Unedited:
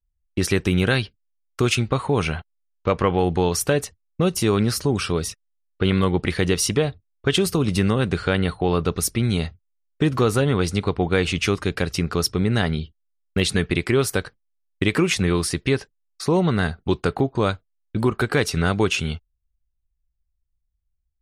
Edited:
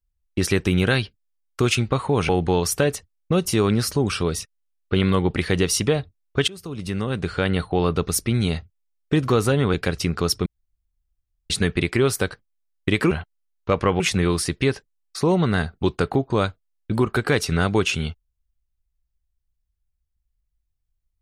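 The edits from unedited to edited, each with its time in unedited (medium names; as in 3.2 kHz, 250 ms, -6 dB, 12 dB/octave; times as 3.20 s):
2.29–3.18 s: move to 15.05 s
7.37–8.49 s: fade in, from -23 dB
10.63–11.68 s: delete
12.40–13.44 s: room tone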